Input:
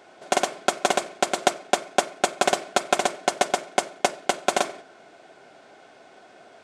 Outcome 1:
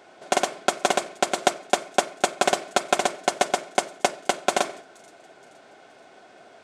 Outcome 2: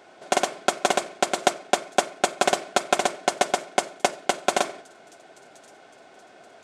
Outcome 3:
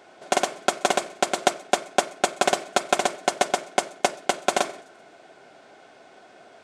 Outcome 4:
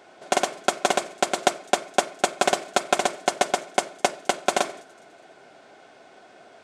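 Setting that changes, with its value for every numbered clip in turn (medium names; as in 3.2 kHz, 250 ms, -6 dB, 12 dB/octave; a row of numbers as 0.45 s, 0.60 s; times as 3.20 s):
feedback echo behind a high-pass, time: 473 ms, 1072 ms, 127 ms, 206 ms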